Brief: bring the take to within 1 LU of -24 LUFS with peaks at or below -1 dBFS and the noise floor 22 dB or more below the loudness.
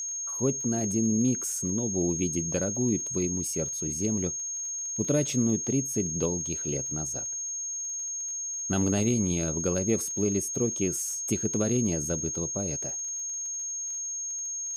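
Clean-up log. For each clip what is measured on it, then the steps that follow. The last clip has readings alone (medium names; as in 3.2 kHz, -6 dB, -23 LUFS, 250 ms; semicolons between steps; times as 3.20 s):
tick rate 33 per s; steady tone 6.5 kHz; tone level -31 dBFS; loudness -28.0 LUFS; peak level -12.5 dBFS; loudness target -24.0 LUFS
-> de-click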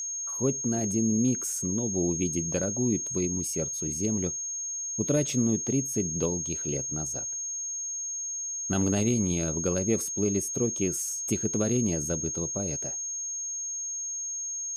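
tick rate 0.068 per s; steady tone 6.5 kHz; tone level -31 dBFS
-> band-stop 6.5 kHz, Q 30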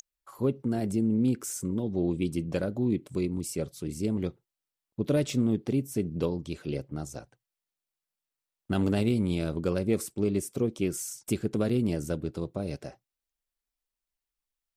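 steady tone not found; loudness -30.0 LUFS; peak level -13.5 dBFS; loudness target -24.0 LUFS
-> trim +6 dB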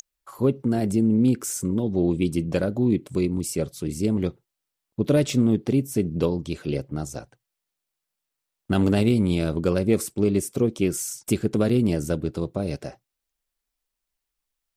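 loudness -24.0 LUFS; peak level -7.5 dBFS; noise floor -84 dBFS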